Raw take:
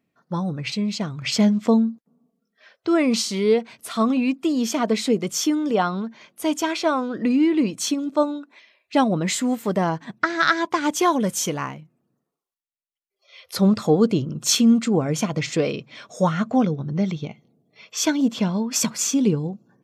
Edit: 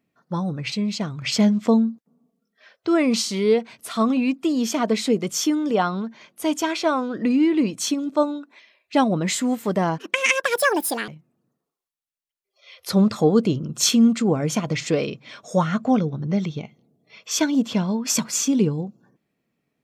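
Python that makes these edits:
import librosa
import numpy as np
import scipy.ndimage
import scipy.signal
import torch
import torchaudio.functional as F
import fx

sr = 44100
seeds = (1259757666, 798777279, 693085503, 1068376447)

y = fx.edit(x, sr, fx.speed_span(start_s=9.98, length_s=1.76, speed=1.6), tone=tone)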